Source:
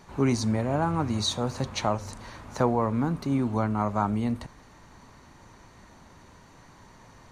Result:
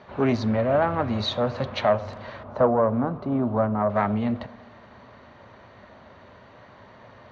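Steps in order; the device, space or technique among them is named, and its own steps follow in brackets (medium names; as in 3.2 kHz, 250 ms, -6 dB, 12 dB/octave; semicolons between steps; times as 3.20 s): analogue delay pedal into a guitar amplifier (bucket-brigade echo 125 ms, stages 1024, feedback 62%, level -23 dB; valve stage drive 16 dB, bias 0.5; cabinet simulation 98–3600 Hz, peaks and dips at 160 Hz -9 dB, 310 Hz -7 dB, 600 Hz +8 dB, 900 Hz -4 dB, 2.4 kHz -3 dB); 2.43–3.90 s: high-order bell 3.8 kHz -11.5 dB 2.7 oct; trim +7.5 dB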